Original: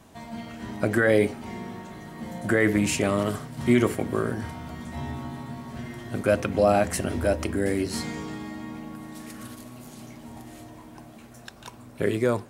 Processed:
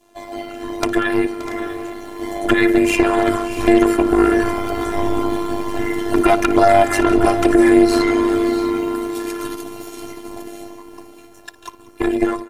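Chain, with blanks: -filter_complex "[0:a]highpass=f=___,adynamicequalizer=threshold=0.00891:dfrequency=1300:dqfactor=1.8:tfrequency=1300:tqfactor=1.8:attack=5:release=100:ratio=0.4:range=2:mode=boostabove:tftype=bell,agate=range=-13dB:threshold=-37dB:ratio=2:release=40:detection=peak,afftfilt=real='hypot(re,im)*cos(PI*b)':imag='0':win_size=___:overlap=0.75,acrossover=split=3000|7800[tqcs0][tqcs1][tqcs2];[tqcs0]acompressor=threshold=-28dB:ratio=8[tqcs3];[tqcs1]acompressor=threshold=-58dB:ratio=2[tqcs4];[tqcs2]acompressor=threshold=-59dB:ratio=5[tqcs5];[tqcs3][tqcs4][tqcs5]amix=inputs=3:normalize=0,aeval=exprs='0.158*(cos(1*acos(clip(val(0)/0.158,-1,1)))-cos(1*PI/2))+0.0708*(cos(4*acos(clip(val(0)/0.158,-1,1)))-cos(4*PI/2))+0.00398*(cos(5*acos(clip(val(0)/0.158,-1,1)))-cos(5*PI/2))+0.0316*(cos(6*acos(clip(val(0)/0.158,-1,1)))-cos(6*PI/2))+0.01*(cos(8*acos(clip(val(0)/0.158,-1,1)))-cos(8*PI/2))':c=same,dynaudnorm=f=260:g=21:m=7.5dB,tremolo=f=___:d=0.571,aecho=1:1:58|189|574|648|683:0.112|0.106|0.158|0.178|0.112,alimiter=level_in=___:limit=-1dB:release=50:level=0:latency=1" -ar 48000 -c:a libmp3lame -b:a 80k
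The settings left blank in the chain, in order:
74, 512, 100, 17dB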